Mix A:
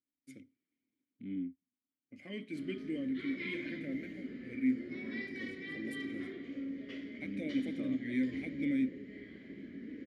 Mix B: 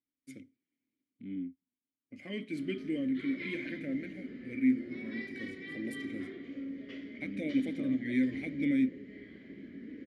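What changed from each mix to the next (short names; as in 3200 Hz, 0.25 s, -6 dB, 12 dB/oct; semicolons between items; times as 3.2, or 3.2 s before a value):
first voice +4.0 dB; background: add high shelf 9400 Hz -8.5 dB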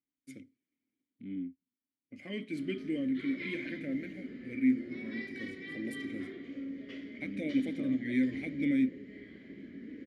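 background: add high shelf 9400 Hz +8.5 dB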